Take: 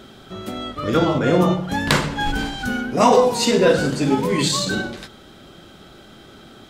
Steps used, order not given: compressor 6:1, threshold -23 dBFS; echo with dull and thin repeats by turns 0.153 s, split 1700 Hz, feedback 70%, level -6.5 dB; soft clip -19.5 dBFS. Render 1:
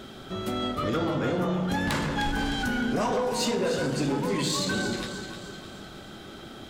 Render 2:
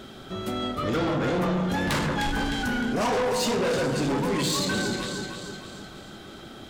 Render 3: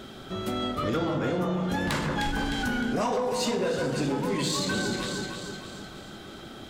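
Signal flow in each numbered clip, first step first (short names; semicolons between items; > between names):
compressor > echo with dull and thin repeats by turns > soft clip; echo with dull and thin repeats by turns > soft clip > compressor; echo with dull and thin repeats by turns > compressor > soft clip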